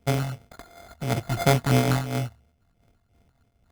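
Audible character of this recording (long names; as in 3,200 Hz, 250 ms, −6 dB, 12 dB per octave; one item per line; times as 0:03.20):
a buzz of ramps at a fixed pitch in blocks of 64 samples
phaser sweep stages 6, 2.9 Hz, lowest notch 420–3,600 Hz
aliases and images of a low sample rate 2,800 Hz, jitter 0%
amplitude modulation by smooth noise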